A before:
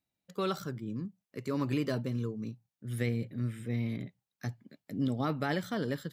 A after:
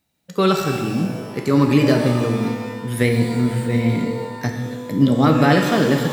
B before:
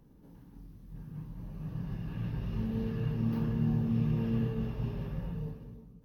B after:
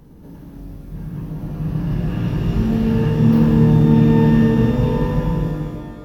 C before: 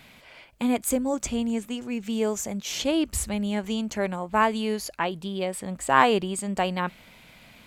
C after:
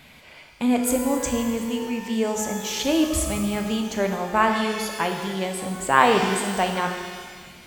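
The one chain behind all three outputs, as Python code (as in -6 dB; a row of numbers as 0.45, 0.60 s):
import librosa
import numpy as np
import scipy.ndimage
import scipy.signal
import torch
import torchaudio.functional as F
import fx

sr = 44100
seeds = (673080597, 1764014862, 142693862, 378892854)

y = fx.rev_shimmer(x, sr, seeds[0], rt60_s=1.6, semitones=12, shimmer_db=-8, drr_db=3.5)
y = y * 10.0 ** (-1.5 / 20.0) / np.max(np.abs(y))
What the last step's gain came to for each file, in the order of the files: +15.0, +14.5, +1.5 dB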